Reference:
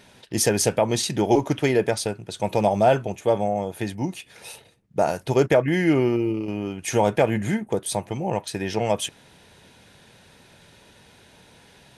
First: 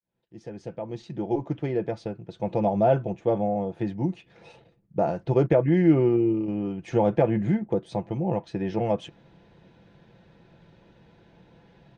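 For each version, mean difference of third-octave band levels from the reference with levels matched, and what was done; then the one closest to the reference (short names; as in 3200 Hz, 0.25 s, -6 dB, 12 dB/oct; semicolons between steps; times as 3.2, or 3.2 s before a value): 7.5 dB: opening faded in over 3.09 s; Gaussian blur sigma 1.8 samples; tilt shelf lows +6 dB, about 870 Hz; comb 5.9 ms, depth 44%; gain -5.5 dB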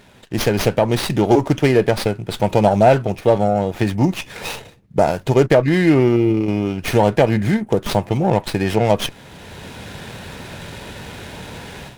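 5.5 dB: AGC gain up to 15 dB; low shelf 120 Hz +5 dB; in parallel at -0.5 dB: compressor, threshold -23 dBFS, peak gain reduction 16 dB; on the sum: running maximum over 5 samples; gain -2.5 dB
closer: second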